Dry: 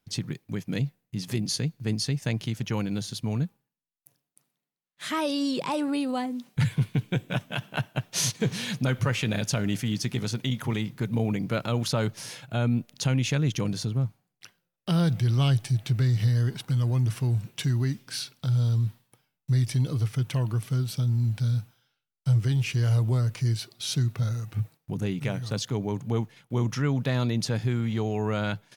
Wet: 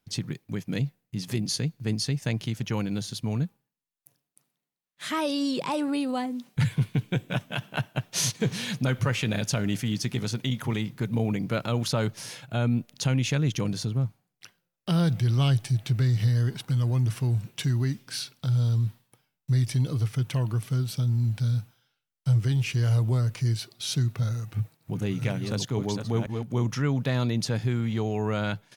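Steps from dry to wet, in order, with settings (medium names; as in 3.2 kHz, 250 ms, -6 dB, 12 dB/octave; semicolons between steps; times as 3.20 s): 24.28–26.54 s: chunks repeated in reverse 496 ms, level -5 dB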